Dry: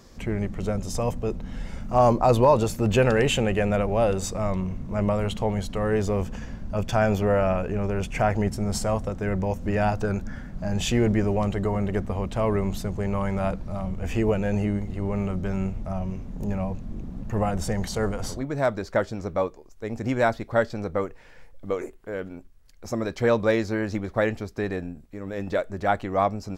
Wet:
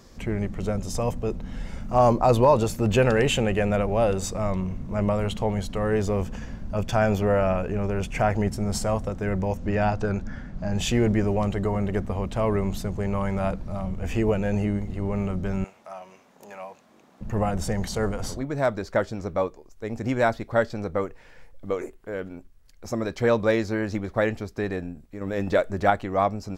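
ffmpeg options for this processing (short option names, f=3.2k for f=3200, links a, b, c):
-filter_complex "[0:a]asettb=1/sr,asplit=3[a][b][c];[a]atrim=end=9.574[d];[b]atrim=start=9.57:end=10.76,asetpts=PTS-STARTPTS,afade=t=in:d=0.004:c=qsin,afade=t=out:st=1.186:d=0.004:c=qsin,lowpass=6.6k[e];[c]atrim=start=10.756[f];[d][e]acrossfade=d=0.004:c1=hsin:c2=qsin[g];[g][f]acrossfade=d=0.004:c1=qsin:c2=hsin,asettb=1/sr,asplit=3[h][i][j];[h]atrim=end=15.644[k];[i]atrim=start=15.64:end=17.21,asetpts=PTS-STARTPTS,afade=t=in:d=0.004:c=qsin,afade=t=out:st=1.566:d=0.004:c=qsin,highpass=760[l];[j]atrim=start=17.206[m];[k][l]acrossfade=d=0.004:c1=hsin:c2=qsin[n];[n][m]acrossfade=d=0.004:c1=qsin:c2=hsin,asplit=3[o][p][q];[o]atrim=end=25.212[r];[p]atrim=start=25.208:end=25.902,asetpts=PTS-STARTPTS,volume=4dB[s];[q]atrim=start=25.898[t];[r][s]acrossfade=d=0.004:c1=hsin:c2=hsin[u];[u][t]acrossfade=d=0.004:c1=hsin:c2=hsin"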